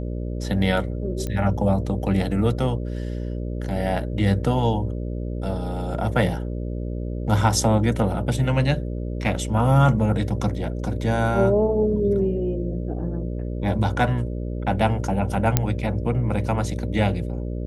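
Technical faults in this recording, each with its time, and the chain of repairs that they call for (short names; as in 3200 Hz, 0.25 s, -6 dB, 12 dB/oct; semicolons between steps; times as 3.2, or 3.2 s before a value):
buzz 60 Hz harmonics 10 -28 dBFS
1.27 pop -16 dBFS
15.57 pop -2 dBFS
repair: de-click; de-hum 60 Hz, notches 10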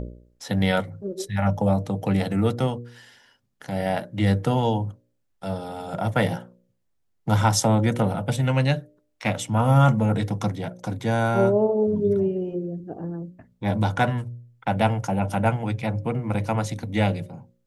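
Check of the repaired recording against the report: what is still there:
none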